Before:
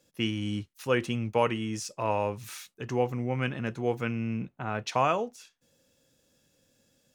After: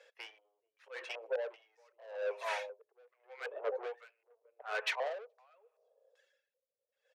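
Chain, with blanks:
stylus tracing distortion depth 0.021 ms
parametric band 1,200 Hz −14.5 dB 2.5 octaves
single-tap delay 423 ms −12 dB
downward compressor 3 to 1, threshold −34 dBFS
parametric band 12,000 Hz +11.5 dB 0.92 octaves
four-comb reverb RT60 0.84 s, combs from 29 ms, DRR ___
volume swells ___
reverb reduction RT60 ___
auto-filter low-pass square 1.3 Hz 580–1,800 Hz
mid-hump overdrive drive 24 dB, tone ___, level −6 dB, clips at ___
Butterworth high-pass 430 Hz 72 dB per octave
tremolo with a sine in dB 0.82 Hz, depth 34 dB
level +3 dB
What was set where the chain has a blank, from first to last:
12.5 dB, 115 ms, 1.1 s, 4,100 Hz, −24 dBFS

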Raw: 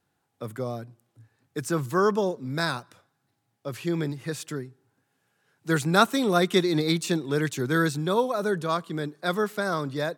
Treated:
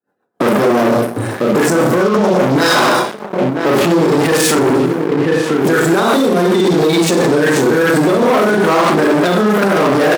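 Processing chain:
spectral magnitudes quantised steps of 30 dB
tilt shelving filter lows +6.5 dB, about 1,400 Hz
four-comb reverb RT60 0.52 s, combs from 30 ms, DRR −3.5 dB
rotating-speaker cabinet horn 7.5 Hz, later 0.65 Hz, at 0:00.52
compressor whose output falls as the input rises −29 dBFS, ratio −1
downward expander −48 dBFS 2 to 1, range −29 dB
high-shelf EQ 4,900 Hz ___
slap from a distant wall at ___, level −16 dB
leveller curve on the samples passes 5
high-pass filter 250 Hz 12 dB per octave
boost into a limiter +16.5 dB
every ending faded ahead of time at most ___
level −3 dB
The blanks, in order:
+4.5 dB, 170 metres, 120 dB per second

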